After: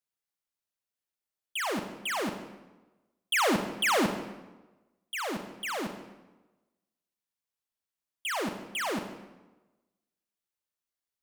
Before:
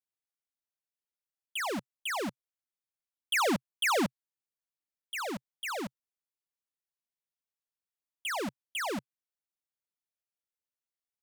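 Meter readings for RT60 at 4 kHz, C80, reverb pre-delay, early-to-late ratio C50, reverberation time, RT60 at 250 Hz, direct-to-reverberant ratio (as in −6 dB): 0.85 s, 10.0 dB, 33 ms, 8.0 dB, 1.2 s, 1.2 s, 7.0 dB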